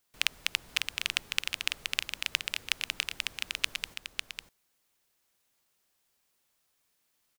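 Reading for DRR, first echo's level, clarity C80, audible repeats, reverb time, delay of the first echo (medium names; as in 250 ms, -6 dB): no reverb, -5.5 dB, no reverb, 1, no reverb, 550 ms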